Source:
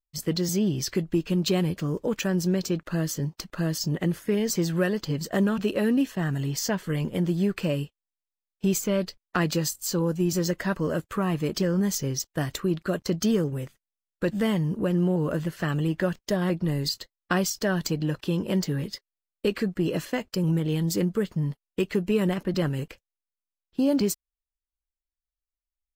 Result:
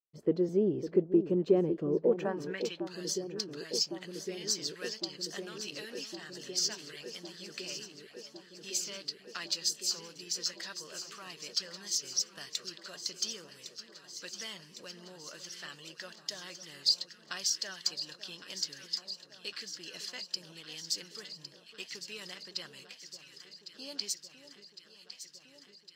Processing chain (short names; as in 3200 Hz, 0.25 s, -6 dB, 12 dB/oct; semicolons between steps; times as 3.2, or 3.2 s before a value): band-pass sweep 420 Hz -> 4800 Hz, 2.07–2.84; echo with dull and thin repeats by turns 0.554 s, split 1200 Hz, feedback 85%, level -10.5 dB; gain +3.5 dB